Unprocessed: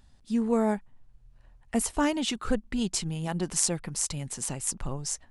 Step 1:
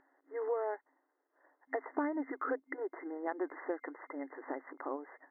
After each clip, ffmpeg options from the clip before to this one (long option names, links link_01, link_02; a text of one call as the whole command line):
ffmpeg -i in.wav -af "afftfilt=real='re*between(b*sr/4096,260,2100)':imag='im*between(b*sr/4096,260,2100)':win_size=4096:overlap=0.75,acompressor=threshold=-34dB:ratio=6,volume=2dB" out.wav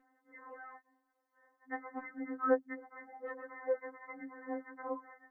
ffmpeg -i in.wav -af "afftfilt=real='re*3.46*eq(mod(b,12),0)':imag='im*3.46*eq(mod(b,12),0)':win_size=2048:overlap=0.75,volume=2dB" out.wav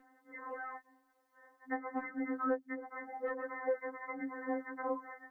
ffmpeg -i in.wav -filter_complex "[0:a]acrossover=split=640|1700[link_01][link_02][link_03];[link_01]acompressor=threshold=-42dB:ratio=4[link_04];[link_02]acompressor=threshold=-48dB:ratio=4[link_05];[link_03]acompressor=threshold=-57dB:ratio=4[link_06];[link_04][link_05][link_06]amix=inputs=3:normalize=0,volume=7dB" out.wav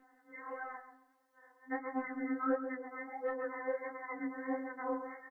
ffmpeg -i in.wav -filter_complex "[0:a]flanger=delay=19:depth=7.6:speed=1.5,asplit=2[link_01][link_02];[link_02]adelay=136,lowpass=frequency=1900:poles=1,volume=-9dB,asplit=2[link_03][link_04];[link_04]adelay=136,lowpass=frequency=1900:poles=1,volume=0.24,asplit=2[link_05][link_06];[link_06]adelay=136,lowpass=frequency=1900:poles=1,volume=0.24[link_07];[link_01][link_03][link_05][link_07]amix=inputs=4:normalize=0,volume=2.5dB" out.wav